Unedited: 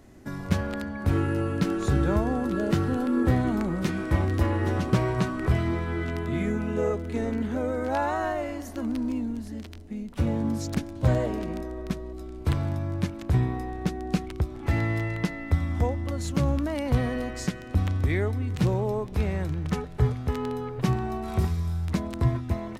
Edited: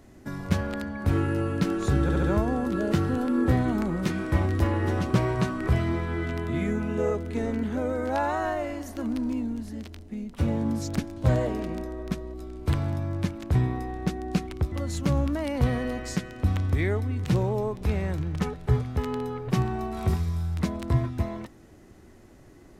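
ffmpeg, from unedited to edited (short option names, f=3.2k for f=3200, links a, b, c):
-filter_complex "[0:a]asplit=5[a][b][c][d][e];[a]atrim=end=2.092[f];[b]atrim=start=2.018:end=2.092[g];[c]atrim=start=2.018:end=2.092[h];[d]atrim=start=2.018:end=14.512[i];[e]atrim=start=16.028[j];[f][g]acrossfade=d=0.004:c1=hsin:c2=hsin[k];[k][h]acrossfade=d=0.004:c1=hsin:c2=hsin[l];[l][i]acrossfade=d=0.004:c1=hsin:c2=hsin[m];[m][j]acrossfade=d=0.004:c1=hsin:c2=hsin"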